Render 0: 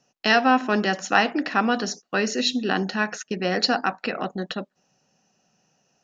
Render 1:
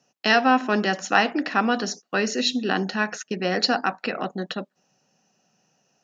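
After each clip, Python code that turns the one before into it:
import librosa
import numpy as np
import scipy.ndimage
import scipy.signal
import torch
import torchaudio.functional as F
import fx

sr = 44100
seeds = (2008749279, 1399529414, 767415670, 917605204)

y = scipy.signal.sosfilt(scipy.signal.butter(2, 110.0, 'highpass', fs=sr, output='sos'), x)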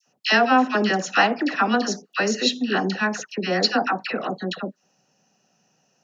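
y = fx.dispersion(x, sr, late='lows', ms=71.0, hz=1200.0)
y = y * 10.0 ** (1.5 / 20.0)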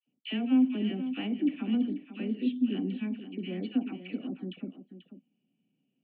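y = fx.formant_cascade(x, sr, vowel='i')
y = y + 10.0 ** (-11.5 / 20.0) * np.pad(y, (int(488 * sr / 1000.0), 0))[:len(y)]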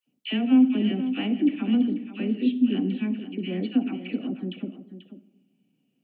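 y = fx.rev_freeverb(x, sr, rt60_s=1.1, hf_ratio=0.35, predelay_ms=20, drr_db=15.5)
y = y * 10.0 ** (6.0 / 20.0)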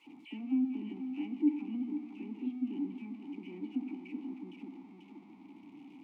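y = x + 0.5 * 10.0 ** (-31.0 / 20.0) * np.sign(x)
y = fx.vowel_filter(y, sr, vowel='u')
y = y * 10.0 ** (-6.0 / 20.0)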